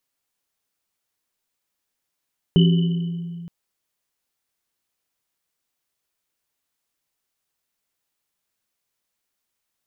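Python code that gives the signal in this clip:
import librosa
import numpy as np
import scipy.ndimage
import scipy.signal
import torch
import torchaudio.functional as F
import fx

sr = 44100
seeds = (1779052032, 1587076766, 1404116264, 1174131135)

y = fx.risset_drum(sr, seeds[0], length_s=0.92, hz=170.0, decay_s=2.58, noise_hz=3000.0, noise_width_hz=130.0, noise_pct=10)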